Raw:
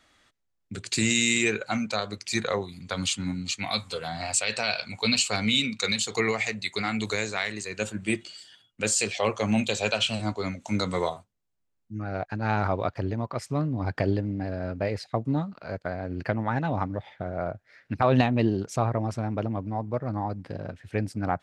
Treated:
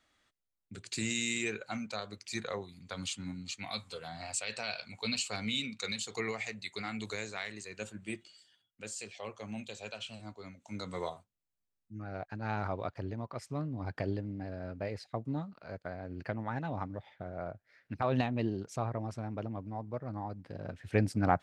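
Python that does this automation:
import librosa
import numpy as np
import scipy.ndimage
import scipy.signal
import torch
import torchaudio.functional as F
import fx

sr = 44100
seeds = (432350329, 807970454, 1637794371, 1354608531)

y = fx.gain(x, sr, db=fx.line((7.66, -10.5), (8.87, -17.5), (10.57, -17.5), (11.08, -9.5), (20.49, -9.5), (20.9, 0.0)))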